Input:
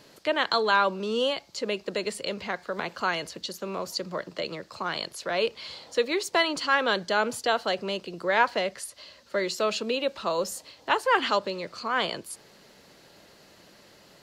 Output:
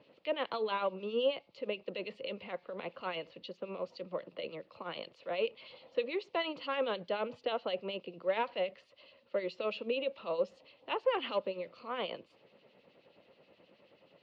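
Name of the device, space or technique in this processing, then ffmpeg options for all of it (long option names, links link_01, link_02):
guitar amplifier with harmonic tremolo: -filter_complex "[0:a]acrossover=split=2200[link_01][link_02];[link_01]aeval=exprs='val(0)*(1-0.7/2+0.7/2*cos(2*PI*9.4*n/s))':channel_layout=same[link_03];[link_02]aeval=exprs='val(0)*(1-0.7/2-0.7/2*cos(2*PI*9.4*n/s))':channel_layout=same[link_04];[link_03][link_04]amix=inputs=2:normalize=0,asoftclip=type=tanh:threshold=-16dB,highpass=100,equalizer=frequency=260:width_type=q:width=4:gain=3,equalizer=frequency=520:width_type=q:width=4:gain=9,equalizer=frequency=1600:width_type=q:width=4:gain=-9,equalizer=frequency=2700:width_type=q:width=4:gain=6,lowpass=frequency=3400:width=0.5412,lowpass=frequency=3400:width=1.3066,volume=-7.5dB"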